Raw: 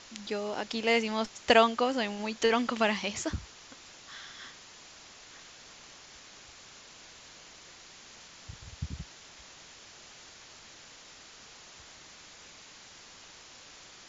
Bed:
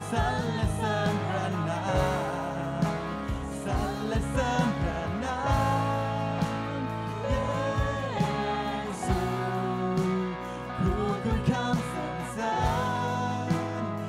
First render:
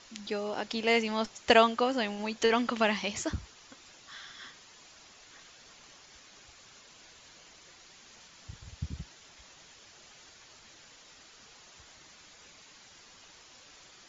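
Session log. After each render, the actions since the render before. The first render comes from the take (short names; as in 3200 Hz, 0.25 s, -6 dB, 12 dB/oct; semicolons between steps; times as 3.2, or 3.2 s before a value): denoiser 6 dB, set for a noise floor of -52 dBFS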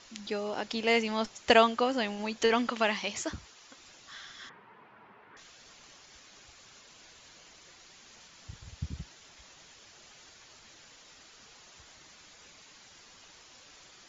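2.69–3.78 low shelf 200 Hz -9.5 dB; 4.49–5.37 speaker cabinet 110–2200 Hz, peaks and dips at 120 Hz +7 dB, 200 Hz +9 dB, 420 Hz +8 dB, 930 Hz +10 dB, 1400 Hz +4 dB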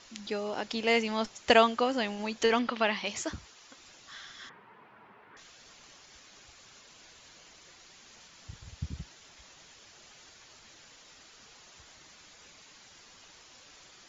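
2.59–3.06 LPF 5000 Hz 24 dB/oct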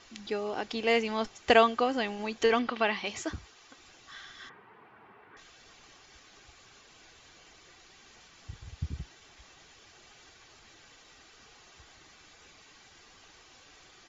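tone controls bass +2 dB, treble -5 dB; comb 2.6 ms, depth 30%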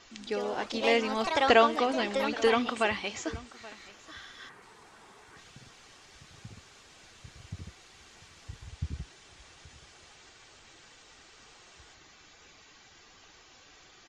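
echo 0.827 s -20 dB; echoes that change speed 0.105 s, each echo +3 st, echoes 3, each echo -6 dB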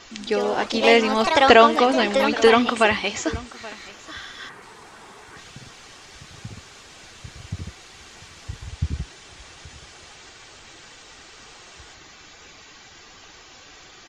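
gain +10 dB; limiter -1 dBFS, peak gain reduction 3 dB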